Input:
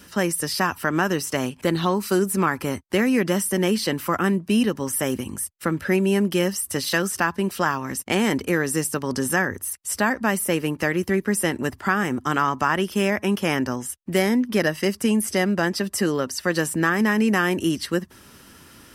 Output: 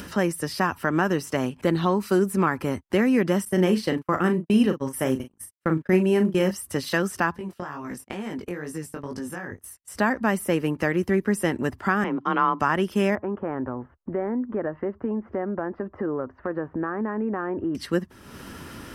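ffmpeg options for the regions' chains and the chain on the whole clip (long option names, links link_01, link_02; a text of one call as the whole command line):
ffmpeg -i in.wav -filter_complex "[0:a]asettb=1/sr,asplit=3[link_01][link_02][link_03];[link_01]atrim=end=3.454[link_04];[link_02]atrim=start=3.45:end=6.51,asetpts=PTS-STARTPTS,afade=type=in:duration=0.004:curve=qsin,afade=type=out:start_time=3.056:duration=0.004:curve=qsin,agate=range=-43dB:threshold=-28dB:ratio=16:release=100:detection=peak,asplit=2[link_05][link_06];[link_06]adelay=38,volume=-8dB[link_07];[link_05][link_07]amix=inputs=2:normalize=0,atrim=end_sample=134946[link_08];[link_03]atrim=start=6.506[link_09];[link_04][link_08]acrossfade=duration=0.004:curve1=hsin:curve2=qsin[link_10];[link_10][link_09]acrossfade=duration=0.004:curve1=qsin:curve2=hsin,asettb=1/sr,asplit=3[link_11][link_12][link_13];[link_11]atrim=end=7.384[link_14];[link_12]atrim=start=7.38:end=9.96,asetpts=PTS-STARTPTS,afade=type=in:duration=0.004:curve=qsin,afade=type=out:start_time=2.576:duration=0.004:curve=qsin,agate=range=-21dB:threshold=-31dB:ratio=16:release=100:detection=peak,acompressor=threshold=-27dB:ratio=4:attack=3.2:release=140:knee=1:detection=peak,flanger=delay=18:depth=4.7:speed=2.2[link_15];[link_13]atrim=start=9.956[link_16];[link_14][link_15]acrossfade=duration=0.004:curve1=hsin:curve2=qsin[link_17];[link_17][link_16]acrossfade=duration=0.004:curve1=qsin:curve2=hsin,asettb=1/sr,asplit=3[link_18][link_19][link_20];[link_18]atrim=end=12.044[link_21];[link_19]atrim=start=12.04:end=12.6,asetpts=PTS-STARTPTS,afade=type=in:duration=0.004:curve=qsin,afade=type=out:start_time=0.556:duration=0.004:curve=qsin,highpass=150,equalizer=frequency=360:width_type=q:width=4:gain=-3,equalizer=frequency=1000:width_type=q:width=4:gain=5,equalizer=frequency=1700:width_type=q:width=4:gain=-5,lowpass=frequency=3900:width=0.5412,lowpass=frequency=3900:width=1.3066,afreqshift=29[link_22];[link_20]atrim=start=12.596[link_23];[link_21][link_22]acrossfade=duration=0.004:curve1=hsin:curve2=qsin[link_24];[link_24][link_23]acrossfade=duration=0.004:curve1=qsin:curve2=hsin,asettb=1/sr,asplit=3[link_25][link_26][link_27];[link_25]atrim=end=13.154[link_28];[link_26]atrim=start=13.15:end=17.75,asetpts=PTS-STARTPTS,afade=type=in:duration=0.004:curve=qsin,afade=type=out:start_time=4.596:duration=0.004:curve=qsin,lowpass=frequency=1400:width=0.5412,lowpass=frequency=1400:width=1.3066,equalizer=frequency=180:width=2.2:gain=-8.5,acompressor=threshold=-25dB:ratio=2:attack=3.2:release=140:knee=1:detection=peak[link_29];[link_27]atrim=start=17.746[link_30];[link_28][link_29]acrossfade=duration=0.004:curve1=hsin:curve2=qsin[link_31];[link_31][link_30]acrossfade=duration=0.004:curve1=qsin:curve2=hsin,acompressor=mode=upward:threshold=-27dB:ratio=2.5,highshelf=frequency=2800:gain=-10" out.wav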